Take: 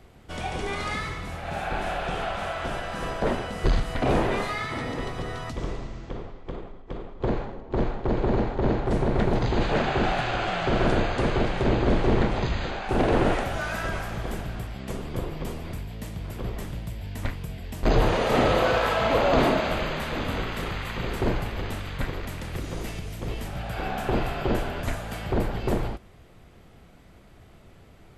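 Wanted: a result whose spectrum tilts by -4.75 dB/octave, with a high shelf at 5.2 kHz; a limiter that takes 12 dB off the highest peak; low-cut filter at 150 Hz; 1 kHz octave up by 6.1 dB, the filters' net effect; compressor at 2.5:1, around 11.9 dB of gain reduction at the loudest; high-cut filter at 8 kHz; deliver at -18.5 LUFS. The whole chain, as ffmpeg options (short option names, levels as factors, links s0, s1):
-af "highpass=150,lowpass=8000,equalizer=f=1000:t=o:g=8,highshelf=f=5200:g=6.5,acompressor=threshold=0.0224:ratio=2.5,volume=8.91,alimiter=limit=0.335:level=0:latency=1"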